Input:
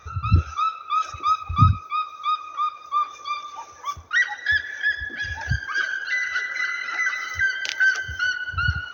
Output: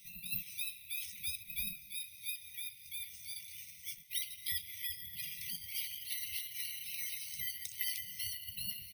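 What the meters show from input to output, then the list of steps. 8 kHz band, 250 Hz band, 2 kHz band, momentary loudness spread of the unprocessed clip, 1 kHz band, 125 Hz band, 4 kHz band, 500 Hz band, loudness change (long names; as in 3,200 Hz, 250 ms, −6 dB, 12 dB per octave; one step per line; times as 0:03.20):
can't be measured, −25.5 dB, −26.0 dB, 8 LU, below −40 dB, −34.0 dB, −8.5 dB, below −40 dB, −15.5 dB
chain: low-pass filter 5,100 Hz 12 dB per octave
gate on every frequency bin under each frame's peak −20 dB weak
flat-topped bell 930 Hz −12 dB 1.3 octaves
in parallel at −2 dB: downward compressor, threshold −48 dBFS, peak gain reduction 15 dB
on the sum: harmonic generator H 8 −41 dB, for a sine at −20.5 dBFS
slap from a distant wall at 39 metres, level −20 dB
bad sample-rate conversion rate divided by 3×, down none, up zero stuff
linear-phase brick-wall band-stop 210–1,900 Hz
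level −5.5 dB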